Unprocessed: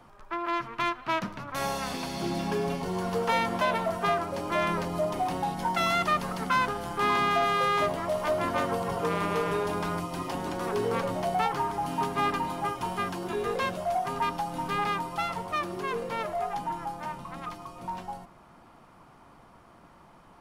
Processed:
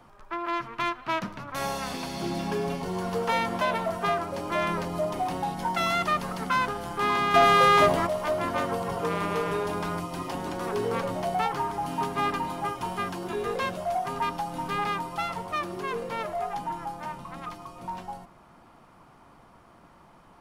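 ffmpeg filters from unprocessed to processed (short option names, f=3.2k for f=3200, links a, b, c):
-filter_complex "[0:a]asettb=1/sr,asplit=3[a][b][c];[a]atrim=end=7.344[d];[b]atrim=start=7.34:end=8.07,asetpts=PTS-STARTPTS,afade=t=in:d=0.004:c=qsin,afade=t=out:st=0.726:d=0.004:c=qsin,acontrast=88[e];[c]atrim=start=8.066[f];[d][e]acrossfade=d=0.004:c1=hsin:c2=qsin[g];[g][f]acrossfade=d=0.004:c1=qsin:c2=hsin"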